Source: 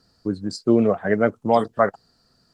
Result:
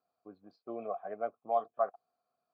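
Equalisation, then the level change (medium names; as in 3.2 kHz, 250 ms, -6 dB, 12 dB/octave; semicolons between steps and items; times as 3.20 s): vowel filter a; Butterworth band-stop 2.8 kHz, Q 7.5; low-pass 3.9 kHz 24 dB/octave; -6.0 dB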